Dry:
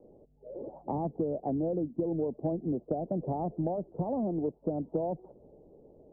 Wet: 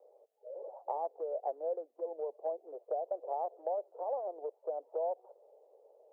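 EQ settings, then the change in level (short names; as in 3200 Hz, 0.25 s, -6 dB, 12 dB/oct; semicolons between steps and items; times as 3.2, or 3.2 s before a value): steep high-pass 480 Hz 48 dB/oct; 0.0 dB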